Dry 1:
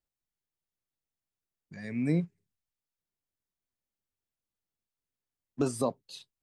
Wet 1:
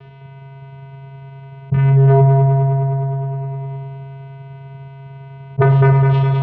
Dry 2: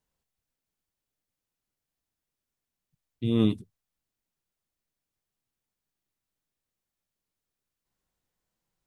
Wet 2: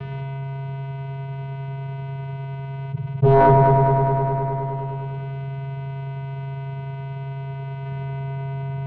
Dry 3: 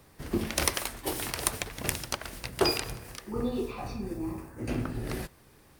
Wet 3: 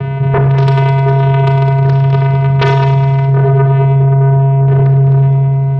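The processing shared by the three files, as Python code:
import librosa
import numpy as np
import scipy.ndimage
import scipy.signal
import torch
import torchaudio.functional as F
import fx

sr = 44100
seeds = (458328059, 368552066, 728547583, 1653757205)

y = fx.vocoder(x, sr, bands=4, carrier='square', carrier_hz=136.0)
y = scipy.signal.sosfilt(scipy.signal.butter(4, 2900.0, 'lowpass', fs=sr, output='sos'), y)
y = fx.fold_sine(y, sr, drive_db=15, ceiling_db=-14.0)
y = fx.echo_heads(y, sr, ms=103, heads='first and second', feedback_pct=49, wet_db=-11.5)
y = fx.rev_schroeder(y, sr, rt60_s=0.52, comb_ms=26, drr_db=6.5)
y = fx.env_flatten(y, sr, amount_pct=70)
y = y * 10.0 ** (1.5 / 20.0)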